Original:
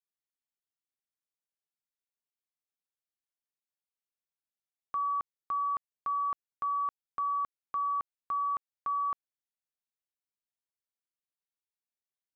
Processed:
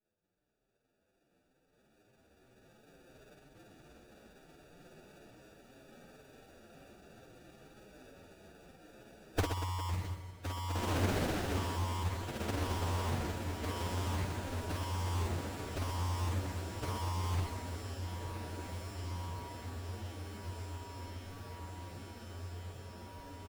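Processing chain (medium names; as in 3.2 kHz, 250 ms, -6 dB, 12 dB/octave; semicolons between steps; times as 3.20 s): spectral sustain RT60 0.40 s; recorder AGC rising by 18 dB/s; peaking EQ 78 Hz +10.5 dB 2.9 oct; static phaser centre 310 Hz, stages 4; sample-and-hold 42×; echo that smears into a reverb 940 ms, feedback 73%, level -7 dB; saturation -23.5 dBFS, distortion -7 dB; doubling 32 ms -13 dB; time stretch by phase-locked vocoder 1.9×; bass shelf 240 Hz -5.5 dB; reverse bouncing-ball echo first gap 50 ms, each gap 1.5×, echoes 5; loudspeaker Doppler distortion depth 0.61 ms; trim +6.5 dB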